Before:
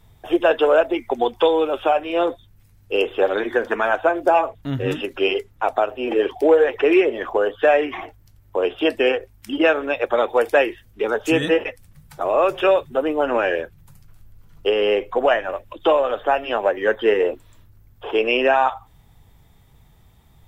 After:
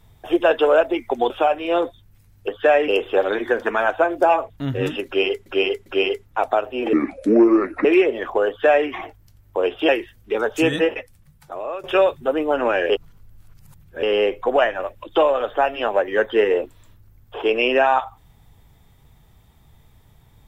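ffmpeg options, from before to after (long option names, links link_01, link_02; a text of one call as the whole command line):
ffmpeg -i in.wav -filter_complex "[0:a]asplit=12[link_01][link_02][link_03][link_04][link_05][link_06][link_07][link_08][link_09][link_10][link_11][link_12];[link_01]atrim=end=1.302[link_13];[link_02]atrim=start=1.748:end=2.932[link_14];[link_03]atrim=start=7.468:end=7.872[link_15];[link_04]atrim=start=2.928:end=5.512[link_16];[link_05]atrim=start=5.108:end=5.512[link_17];[link_06]atrim=start=5.108:end=6.184[link_18];[link_07]atrim=start=6.18:end=6.84,asetpts=PTS-STARTPTS,asetrate=31752,aresample=44100[link_19];[link_08]atrim=start=6.836:end=8.882[link_20];[link_09]atrim=start=10.578:end=12.53,asetpts=PTS-STARTPTS,afade=type=out:start_time=0.782:duration=1.17:silence=0.177828[link_21];[link_10]atrim=start=12.53:end=13.592,asetpts=PTS-STARTPTS,afade=type=in:duration=0.004:curve=hsin:silence=0.177828[link_22];[link_11]atrim=start=13.588:end=14.722,asetpts=PTS-STARTPTS,areverse[link_23];[link_12]atrim=start=14.718[link_24];[link_13][link_14]acrossfade=duration=0.004:curve1=hsin:curve2=hsin[link_25];[link_25][link_15]acrossfade=duration=0.004:curve1=hsin:curve2=hsin[link_26];[link_26][link_16]acrossfade=duration=0.004:curve1=hsin:curve2=hsin[link_27];[link_27][link_17]acrossfade=duration=0.004:curve1=hsin:curve2=hsin[link_28];[link_28][link_18]acrossfade=duration=0.004:curve1=hsin:curve2=hsin[link_29];[link_29][link_19]acrossfade=duration=0.004:curve1=hsin:curve2=hsin[link_30];[link_30][link_20]acrossfade=duration=0.004:curve1=hsin:curve2=hsin[link_31];[link_21][link_22]concat=n=2:v=0:a=1[link_32];[link_31][link_32]acrossfade=duration=0.004:curve1=hsin:curve2=hsin[link_33];[link_33][link_23]acrossfade=duration=0.004:curve1=hsin:curve2=hsin[link_34];[link_34][link_24]acrossfade=duration=0.004:curve1=hsin:curve2=hsin" out.wav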